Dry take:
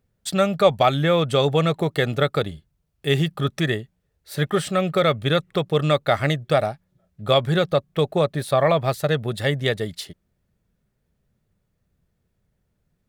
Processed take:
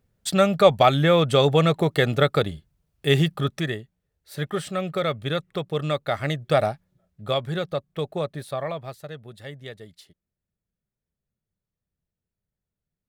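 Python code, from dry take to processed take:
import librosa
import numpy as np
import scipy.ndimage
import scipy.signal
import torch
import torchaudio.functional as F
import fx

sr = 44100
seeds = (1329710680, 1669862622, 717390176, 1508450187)

y = fx.gain(x, sr, db=fx.line((3.27, 1.0), (3.75, -6.0), (6.2, -6.0), (6.68, 1.0), (7.42, -7.5), (8.32, -7.5), (9.09, -16.5)))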